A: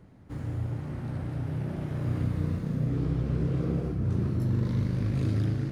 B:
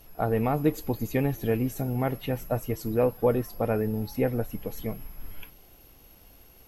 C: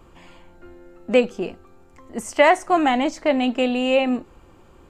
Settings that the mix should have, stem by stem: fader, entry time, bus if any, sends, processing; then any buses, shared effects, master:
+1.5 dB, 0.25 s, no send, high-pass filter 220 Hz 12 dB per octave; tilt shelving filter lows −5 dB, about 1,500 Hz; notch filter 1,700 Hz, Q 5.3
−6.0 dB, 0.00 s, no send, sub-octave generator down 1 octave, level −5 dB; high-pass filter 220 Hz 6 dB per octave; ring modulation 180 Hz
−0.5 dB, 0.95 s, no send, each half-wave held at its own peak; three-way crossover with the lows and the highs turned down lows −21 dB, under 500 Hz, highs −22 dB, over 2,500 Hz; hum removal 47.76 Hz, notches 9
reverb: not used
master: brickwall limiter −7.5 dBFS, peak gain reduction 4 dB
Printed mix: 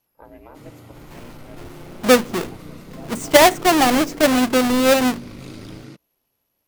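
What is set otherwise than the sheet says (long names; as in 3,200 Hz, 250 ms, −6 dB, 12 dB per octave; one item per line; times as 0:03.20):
stem B −6.0 dB → −14.0 dB
stem C: missing three-way crossover with the lows and the highs turned down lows −21 dB, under 500 Hz, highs −22 dB, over 2,500 Hz
master: missing brickwall limiter −7.5 dBFS, peak gain reduction 4 dB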